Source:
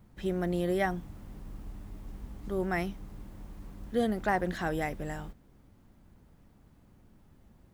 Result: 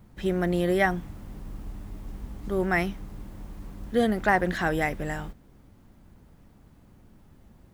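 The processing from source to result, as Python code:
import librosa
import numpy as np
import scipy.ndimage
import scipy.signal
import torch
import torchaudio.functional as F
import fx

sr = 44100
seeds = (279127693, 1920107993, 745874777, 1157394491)

y = fx.dynamic_eq(x, sr, hz=1900.0, q=1.1, threshold_db=-50.0, ratio=4.0, max_db=4)
y = F.gain(torch.from_numpy(y), 5.0).numpy()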